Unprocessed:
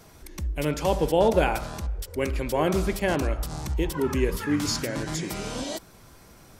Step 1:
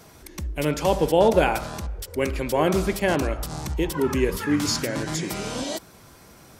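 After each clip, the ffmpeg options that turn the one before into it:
-af "highpass=f=79:p=1,volume=3dB"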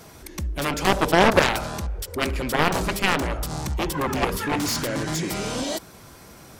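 -af "aeval=exprs='0.531*(cos(1*acos(clip(val(0)/0.531,-1,1)))-cos(1*PI/2))+0.188*(cos(7*acos(clip(val(0)/0.531,-1,1)))-cos(7*PI/2))':c=same"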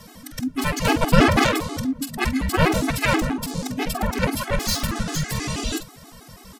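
-filter_complex "[0:a]asplit=2[a][b];[b]adelay=47,volume=-10dB[c];[a][c]amix=inputs=2:normalize=0,afreqshift=-320,afftfilt=real='re*gt(sin(2*PI*6.2*pts/sr)*(1-2*mod(floor(b*sr/1024/220),2)),0)':imag='im*gt(sin(2*PI*6.2*pts/sr)*(1-2*mod(floor(b*sr/1024/220),2)),0)':win_size=1024:overlap=0.75,volume=5dB"

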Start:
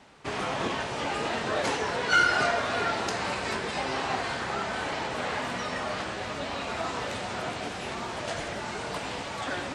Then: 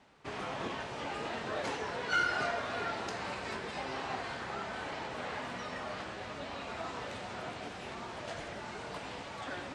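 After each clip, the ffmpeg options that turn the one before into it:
-af "highshelf=f=7.2k:g=-7.5,volume=-8dB"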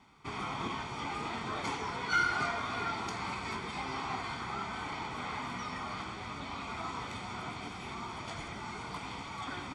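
-af "aecho=1:1:0.9:0.69"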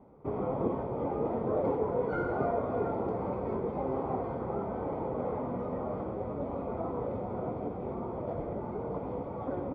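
-af "lowpass=f=530:t=q:w=5.8,volume=5.5dB"

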